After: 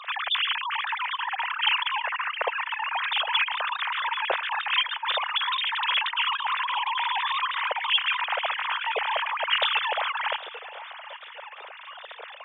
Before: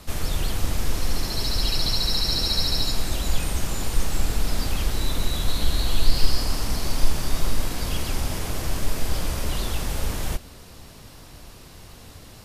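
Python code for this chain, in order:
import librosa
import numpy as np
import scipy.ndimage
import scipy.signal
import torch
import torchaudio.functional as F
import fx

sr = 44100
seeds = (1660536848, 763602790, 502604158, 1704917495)

p1 = fx.sine_speech(x, sr)
p2 = scipy.signal.sosfilt(scipy.signal.butter(8, 450.0, 'highpass', fs=sr, output='sos'), p1)
p3 = p2 + fx.echo_feedback(p2, sr, ms=803, feedback_pct=44, wet_db=-18, dry=0)
y = p3 * 10.0 ** (-8.5 / 20.0)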